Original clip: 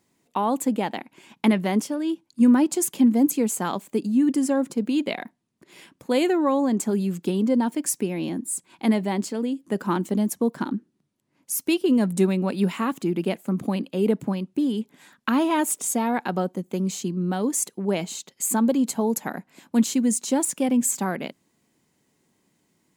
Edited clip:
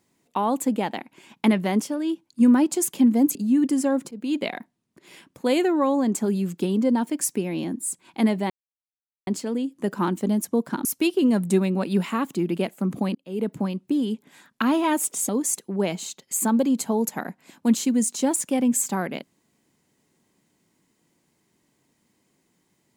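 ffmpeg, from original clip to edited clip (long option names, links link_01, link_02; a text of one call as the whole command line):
ffmpeg -i in.wav -filter_complex "[0:a]asplit=7[link_01][link_02][link_03][link_04][link_05][link_06][link_07];[link_01]atrim=end=3.352[link_08];[link_02]atrim=start=3.998:end=4.76,asetpts=PTS-STARTPTS,afade=type=out:start_time=0.758:duration=0.004:curve=hsin:silence=0.112202[link_09];[link_03]atrim=start=4.76:end=9.15,asetpts=PTS-STARTPTS,afade=type=in:duration=0.27:silence=0.112202,afade=type=out:start_time=4.386:duration=0.004:curve=hsin,apad=pad_dur=0.77[link_10];[link_04]atrim=start=9.15:end=10.732,asetpts=PTS-STARTPTS,afade=type=in:duration=0.004:curve=hsin[link_11];[link_05]atrim=start=11.518:end=13.82,asetpts=PTS-STARTPTS,afade=type=out:start_time=2.298:duration=0.004:curve=hsin[link_12];[link_06]atrim=start=13.82:end=15.962,asetpts=PTS-STARTPTS,afade=type=in:duration=0.48[link_13];[link_07]atrim=start=17.378[link_14];[link_09][link_10][link_11]concat=n=3:v=0:a=1[link_15];[link_08][link_15]acrossfade=duration=0.004:curve1=hsin:curve2=hsin[link_16];[link_12][link_13]concat=n=2:v=0:a=1[link_17];[link_16][link_17]acrossfade=duration=0.004:curve1=hsin:curve2=hsin[link_18];[link_18][link_14]acrossfade=duration=0.004:curve1=hsin:curve2=hsin" out.wav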